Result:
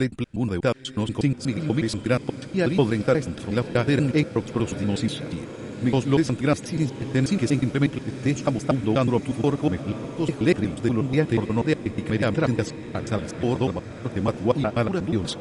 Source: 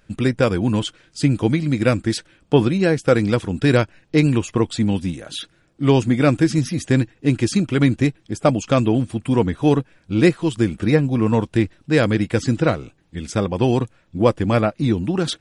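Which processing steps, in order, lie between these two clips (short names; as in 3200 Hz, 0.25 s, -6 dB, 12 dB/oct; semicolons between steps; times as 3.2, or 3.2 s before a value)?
slices in reverse order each 0.121 s, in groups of 3; diffused feedback echo 1.005 s, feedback 65%, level -13 dB; gain -5 dB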